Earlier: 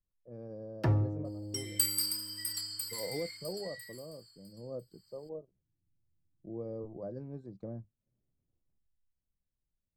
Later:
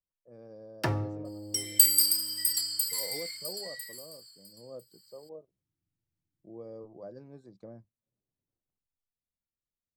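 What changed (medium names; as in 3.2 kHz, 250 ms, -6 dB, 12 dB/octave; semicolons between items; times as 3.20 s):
first sound +5.5 dB; master: add tilt EQ +3 dB/octave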